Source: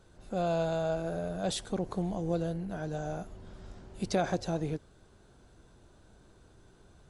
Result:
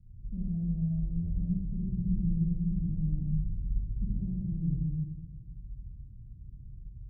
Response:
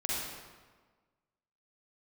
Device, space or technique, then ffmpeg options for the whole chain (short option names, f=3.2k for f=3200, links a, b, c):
club heard from the street: -filter_complex "[0:a]alimiter=level_in=0.5dB:limit=-24dB:level=0:latency=1:release=322,volume=-0.5dB,lowpass=f=150:w=0.5412,lowpass=f=150:w=1.3066[a];[1:a]atrim=start_sample=2205[b];[a][b]afir=irnorm=-1:irlink=0,volume=8dB"